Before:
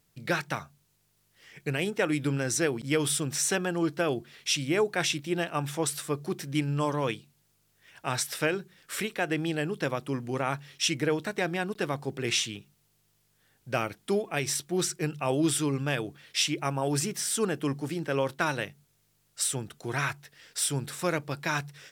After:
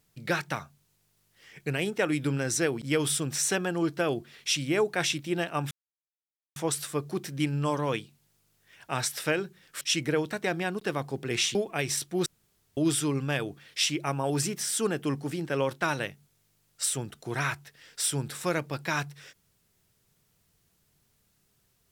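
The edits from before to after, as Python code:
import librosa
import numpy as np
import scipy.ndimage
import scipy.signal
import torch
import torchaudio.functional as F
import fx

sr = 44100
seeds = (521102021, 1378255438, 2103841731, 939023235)

y = fx.edit(x, sr, fx.insert_silence(at_s=5.71, length_s=0.85),
    fx.cut(start_s=8.96, length_s=1.79),
    fx.cut(start_s=12.49, length_s=1.64),
    fx.room_tone_fill(start_s=14.84, length_s=0.51), tone=tone)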